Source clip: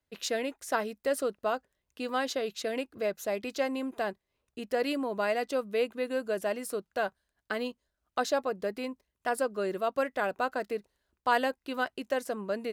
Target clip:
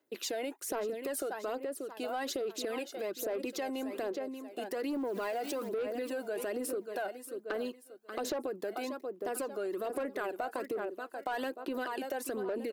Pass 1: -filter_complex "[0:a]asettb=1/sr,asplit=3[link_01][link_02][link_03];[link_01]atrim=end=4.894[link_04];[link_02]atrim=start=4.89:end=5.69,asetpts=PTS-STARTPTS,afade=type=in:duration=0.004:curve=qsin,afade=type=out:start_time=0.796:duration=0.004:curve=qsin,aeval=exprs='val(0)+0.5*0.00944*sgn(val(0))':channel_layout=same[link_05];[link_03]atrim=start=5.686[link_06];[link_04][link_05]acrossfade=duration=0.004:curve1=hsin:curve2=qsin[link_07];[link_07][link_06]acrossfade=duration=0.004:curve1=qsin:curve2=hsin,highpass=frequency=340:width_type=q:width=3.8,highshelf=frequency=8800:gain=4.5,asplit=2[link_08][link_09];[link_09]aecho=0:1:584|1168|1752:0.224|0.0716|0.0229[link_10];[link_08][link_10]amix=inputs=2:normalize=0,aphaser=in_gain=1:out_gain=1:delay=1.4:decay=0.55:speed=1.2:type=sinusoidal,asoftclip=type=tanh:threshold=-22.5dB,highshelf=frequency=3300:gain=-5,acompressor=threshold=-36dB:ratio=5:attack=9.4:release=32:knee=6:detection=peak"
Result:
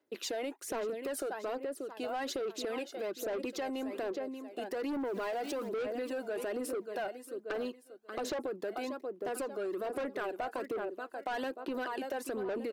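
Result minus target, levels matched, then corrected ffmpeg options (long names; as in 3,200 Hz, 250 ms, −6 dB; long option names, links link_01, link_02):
soft clipping: distortion +7 dB; 8,000 Hz band −2.5 dB
-filter_complex "[0:a]asettb=1/sr,asplit=3[link_01][link_02][link_03];[link_01]atrim=end=4.894[link_04];[link_02]atrim=start=4.89:end=5.69,asetpts=PTS-STARTPTS,afade=type=in:duration=0.004:curve=qsin,afade=type=out:start_time=0.796:duration=0.004:curve=qsin,aeval=exprs='val(0)+0.5*0.00944*sgn(val(0))':channel_layout=same[link_05];[link_03]atrim=start=5.686[link_06];[link_04][link_05]acrossfade=duration=0.004:curve1=hsin:curve2=qsin[link_07];[link_07][link_06]acrossfade=duration=0.004:curve1=qsin:curve2=hsin,highpass=frequency=340:width_type=q:width=3.8,highshelf=frequency=8800:gain=14,asplit=2[link_08][link_09];[link_09]aecho=0:1:584|1168|1752:0.224|0.0716|0.0229[link_10];[link_08][link_10]amix=inputs=2:normalize=0,aphaser=in_gain=1:out_gain=1:delay=1.4:decay=0.55:speed=1.2:type=sinusoidal,asoftclip=type=tanh:threshold=-15dB,highshelf=frequency=3300:gain=-5,acompressor=threshold=-36dB:ratio=5:attack=9.4:release=32:knee=6:detection=peak"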